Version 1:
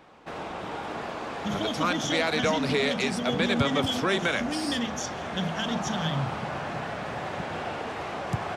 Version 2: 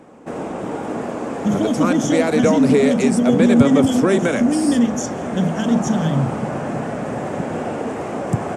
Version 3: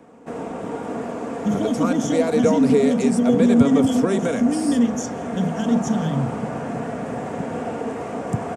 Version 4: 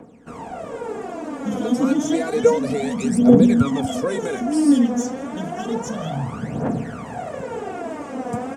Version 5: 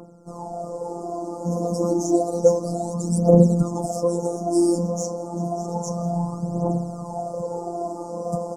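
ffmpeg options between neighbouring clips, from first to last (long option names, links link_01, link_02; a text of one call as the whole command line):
ffmpeg -i in.wav -af "equalizer=frequency=125:width_type=o:width=1:gain=5,equalizer=frequency=250:width_type=o:width=1:gain=12,equalizer=frequency=500:width_type=o:width=1:gain=7,equalizer=frequency=4000:width_type=o:width=1:gain=-10,equalizer=frequency=8000:width_type=o:width=1:gain=12,volume=2dB" out.wav
ffmpeg -i in.wav -filter_complex "[0:a]acrossover=split=230|1400|2800[link_01][link_02][link_03][link_04];[link_02]aecho=1:1:4.3:0.56[link_05];[link_03]alimiter=level_in=7.5dB:limit=-24dB:level=0:latency=1,volume=-7.5dB[link_06];[link_01][link_05][link_06][link_04]amix=inputs=4:normalize=0,volume=-4dB" out.wav
ffmpeg -i in.wav -af "aphaser=in_gain=1:out_gain=1:delay=4.2:decay=0.74:speed=0.3:type=triangular,volume=-4dB" out.wav
ffmpeg -i in.wav -af "aeval=exprs='val(0)+0.0112*sin(2*PI*1300*n/s)':channel_layout=same,asuperstop=centerf=2300:order=12:qfactor=0.62,afftfilt=real='hypot(re,im)*cos(PI*b)':imag='0':win_size=1024:overlap=0.75,volume=4dB" out.wav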